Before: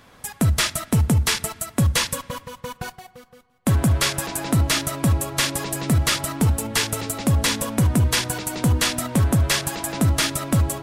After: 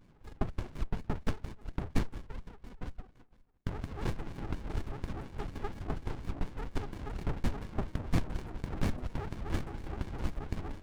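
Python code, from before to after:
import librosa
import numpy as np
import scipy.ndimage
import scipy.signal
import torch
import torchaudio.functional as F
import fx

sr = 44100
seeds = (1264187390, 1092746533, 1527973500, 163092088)

y = fx.notch(x, sr, hz=990.0, q=21.0)
y = fx.wah_lfo(y, sr, hz=4.2, low_hz=400.0, high_hz=2300.0, q=19.0)
y = fx.running_max(y, sr, window=65)
y = F.gain(torch.from_numpy(y), 13.0).numpy()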